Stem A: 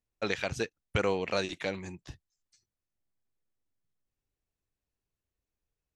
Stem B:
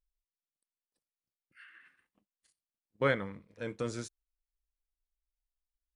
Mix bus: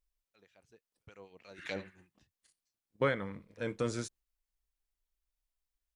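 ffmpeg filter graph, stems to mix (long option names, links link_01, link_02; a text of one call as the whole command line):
ffmpeg -i stem1.wav -i stem2.wav -filter_complex "[0:a]acrossover=split=1400[link_01][link_02];[link_01]aeval=exprs='val(0)*(1-0.7/2+0.7/2*cos(2*PI*6.4*n/s))':channel_layout=same[link_03];[link_02]aeval=exprs='val(0)*(1-0.7/2-0.7/2*cos(2*PI*6.4*n/s))':channel_layout=same[link_04];[link_03][link_04]amix=inputs=2:normalize=0,dynaudnorm=framelen=300:gausssize=7:maxgain=14dB,adelay=50,volume=-14.5dB,asplit=2[link_05][link_06];[link_06]volume=-17.5dB[link_07];[1:a]volume=2dB,asplit=2[link_08][link_09];[link_09]apad=whole_len=264935[link_10];[link_05][link_10]sidechaingate=range=-55dB:threshold=-56dB:ratio=16:detection=peak[link_11];[link_07]aecho=0:1:74:1[link_12];[link_11][link_08][link_12]amix=inputs=3:normalize=0,alimiter=limit=-18.5dB:level=0:latency=1:release=262" out.wav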